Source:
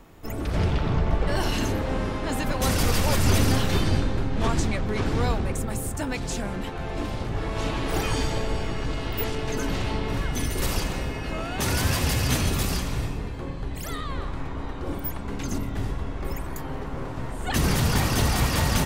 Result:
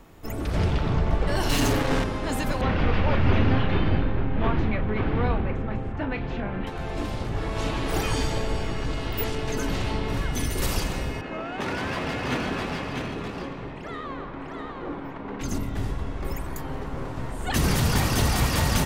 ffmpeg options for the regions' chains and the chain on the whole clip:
-filter_complex "[0:a]asettb=1/sr,asplit=3[a][b][c];[a]atrim=end=1.494[d];[b]atrim=start=1.49:end=2.04,asetpts=PTS-STARTPTS,afade=t=in:d=0.004:c=qsin,afade=t=out:st=0.546:d=0.004:c=qsin,aecho=1:1:7.1:0.97,atrim=end_sample=24255,acrusher=bits=3:mix=0:aa=0.5[e];[c]atrim=start=2.036[f];[d][e]acrossfade=d=0.004:c1=hsin:c2=qsin[g];[g][f]acrossfade=d=0.004:c1=qsin:c2=hsin,asettb=1/sr,asplit=3[h][i][j];[h]atrim=end=2.614[k];[i]atrim=start=2.61:end=6.67,asetpts=PTS-STARTPTS,afade=t=in:d=0.004:c=qsin,afade=t=out:st=4.056:d=0.004:c=qsin,lowpass=f=2.9k:w=0.5412,lowpass=f=2.9k:w=1.3066,asplit=2[l][m];[m]adelay=37,volume=-11dB[n];[l][n]amix=inputs=2:normalize=0,atrim=end_sample=179046[o];[j]atrim=start=6.666[p];[k][o]acrossfade=d=0.004:c1=hsin:c2=qsin[q];[q][p]acrossfade=d=0.004:c1=qsin:c2=hsin,asettb=1/sr,asplit=3[r][s][t];[r]atrim=end=11.214[u];[s]atrim=start=11.21:end=15.41,asetpts=PTS-STARTPTS,afade=t=in:d=0.004:c=qsin,afade=t=out:st=4.196:d=0.004:c=qsin,acrossover=split=170 3300:gain=0.158 1 0.224[v][w][x];[v][w][x]amix=inputs=3:normalize=0,adynamicsmooth=sensitivity=6:basefreq=3.8k,aecho=1:1:651:0.631,atrim=end_sample=185220[y];[t]atrim=start=15.406[z];[u][y]acrossfade=d=0.004:c1=hsin:c2=qsin[aa];[aa][z]acrossfade=d=0.004:c1=qsin:c2=hsin"

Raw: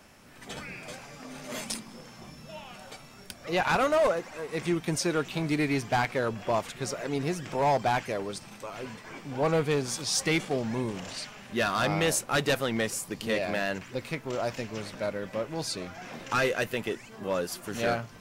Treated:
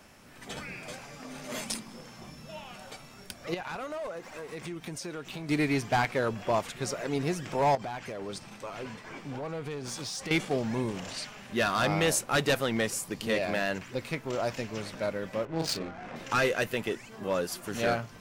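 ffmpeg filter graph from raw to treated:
-filter_complex "[0:a]asettb=1/sr,asplit=3[a][b][c];[a]atrim=end=3.544[d];[b]atrim=start=3.54:end=5.49,asetpts=PTS-STARTPTS,afade=t=in:d=0.004:c=qsin,afade=t=out:st=1.946:d=0.004:c=qsin,aeval=exprs='sgn(val(0))*max(abs(val(0))-0.00112,0)':c=same,acompressor=threshold=-36dB:ratio=5:attack=3.2:release=140:knee=1:detection=peak[e];[c]atrim=start=5.486[f];[d][e]acrossfade=d=0.004:c1=hsin:c2=qsin[g];[g][f]acrossfade=d=0.004:c1=qsin:c2=hsin,asettb=1/sr,asplit=3[h][i][j];[h]atrim=end=7.754[k];[i]atrim=start=7.75:end=10.31,asetpts=PTS-STARTPTS,afade=t=in:d=0.004:c=qsin,afade=t=out:st=2.556:d=0.004:c=qsin,highshelf=f=9k:g=-7,acompressor=threshold=-32dB:ratio=20:attack=3.2:release=140:knee=1:detection=peak,asoftclip=type=hard:threshold=-31.5dB[l];[j]atrim=start=10.306[m];[k][l]acrossfade=d=0.004:c1=hsin:c2=qsin[n];[n][m]acrossfade=d=0.004:c1=qsin:c2=hsin,asettb=1/sr,asplit=3[o][p][q];[o]atrim=end=15.454[r];[p]atrim=start=15.45:end=16.16,asetpts=PTS-STARTPTS,afade=t=in:d=0.004:c=qsin,afade=t=out:st=0.706:d=0.004:c=qsin,highshelf=f=3.9k:g=7.5,asplit=2[s][t];[t]adelay=37,volume=-3.5dB[u];[s][u]amix=inputs=2:normalize=0,atrim=end_sample=31311,adynamicsmooth=sensitivity=4.5:basefreq=1k[v];[q]atrim=start=16.156[w];[r][v]acrossfade=d=0.004:c1=hsin:c2=qsin[x];[x][w]acrossfade=d=0.004:c1=qsin:c2=hsin"

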